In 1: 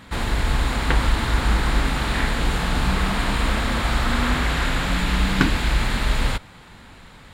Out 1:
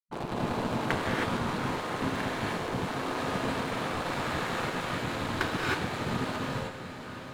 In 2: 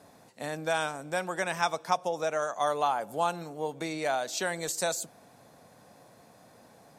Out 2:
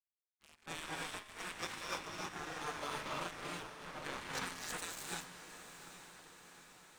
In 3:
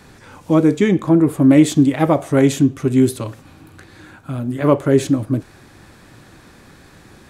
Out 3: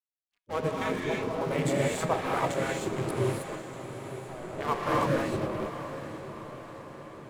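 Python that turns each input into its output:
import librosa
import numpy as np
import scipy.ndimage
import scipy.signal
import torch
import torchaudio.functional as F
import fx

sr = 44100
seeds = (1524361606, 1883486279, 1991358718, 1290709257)

y = fx.wiener(x, sr, points=25)
y = fx.rev_gated(y, sr, seeds[0], gate_ms=340, shape='rising', drr_db=-4.0)
y = np.sign(y) * np.maximum(np.abs(y) - 10.0 ** (-31.5 / 20.0), 0.0)
y = fx.spec_gate(y, sr, threshold_db=-10, keep='weak')
y = fx.comb_fb(y, sr, f0_hz=88.0, decay_s=1.9, harmonics='all', damping=0.0, mix_pct=60)
y = fx.rider(y, sr, range_db=10, speed_s=2.0)
y = fx.echo_diffused(y, sr, ms=831, feedback_pct=57, wet_db=-11.0)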